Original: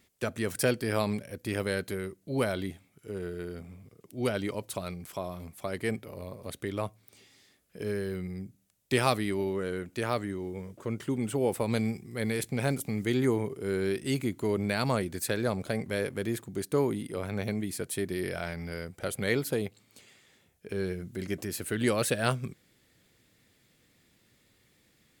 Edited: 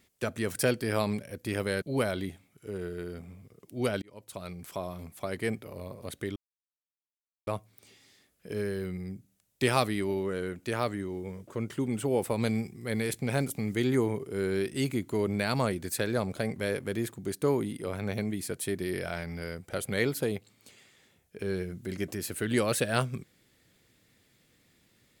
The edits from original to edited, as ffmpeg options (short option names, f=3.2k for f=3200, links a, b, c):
-filter_complex "[0:a]asplit=4[a][b][c][d];[a]atrim=end=1.822[e];[b]atrim=start=2.228:end=4.43,asetpts=PTS-STARTPTS,afade=t=out:st=2.198:d=0.004:c=hsin[f];[c]atrim=start=4.43:end=6.77,asetpts=PTS-STARTPTS,afade=t=in:d=0.66,afade=t=out:st=2.336:d=0.004:c=hsin,apad=pad_dur=1.11[g];[d]atrim=start=6.77,asetpts=PTS-STARTPTS,afade=t=in:d=0.004:c=hsin[h];[f][g][h]concat=n=3:v=0:a=1[i];[e][i]acrossfade=d=0.004:c1=hsin:c2=hsin"